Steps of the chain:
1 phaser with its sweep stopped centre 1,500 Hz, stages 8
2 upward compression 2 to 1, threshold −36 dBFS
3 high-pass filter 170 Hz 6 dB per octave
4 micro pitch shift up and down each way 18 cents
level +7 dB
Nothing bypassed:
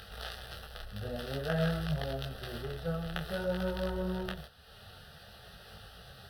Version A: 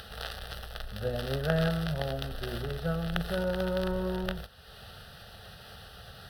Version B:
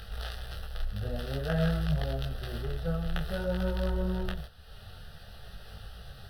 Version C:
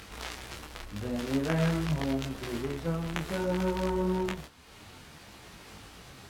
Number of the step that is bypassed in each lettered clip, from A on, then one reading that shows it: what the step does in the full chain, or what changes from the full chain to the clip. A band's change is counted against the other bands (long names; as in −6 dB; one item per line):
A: 4, change in crest factor +3.0 dB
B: 3, 125 Hz band +4.5 dB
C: 1, 8 kHz band +7.0 dB